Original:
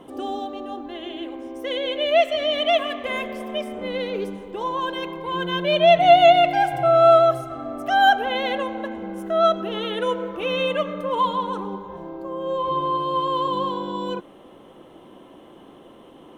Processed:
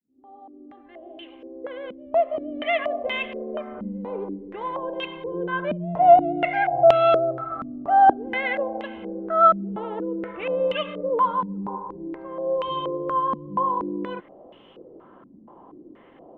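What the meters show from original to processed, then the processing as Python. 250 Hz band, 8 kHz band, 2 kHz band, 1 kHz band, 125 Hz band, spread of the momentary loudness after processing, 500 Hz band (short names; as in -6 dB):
-1.0 dB, n/a, -4.0 dB, -1.0 dB, -2.0 dB, 17 LU, -3.0 dB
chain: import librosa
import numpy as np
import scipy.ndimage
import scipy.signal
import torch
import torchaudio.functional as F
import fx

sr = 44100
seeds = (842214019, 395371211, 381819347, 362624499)

y = fx.fade_in_head(x, sr, length_s=2.86)
y = fx.filter_held_lowpass(y, sr, hz=4.2, low_hz=220.0, high_hz=2900.0)
y = y * 10.0 ** (-5.5 / 20.0)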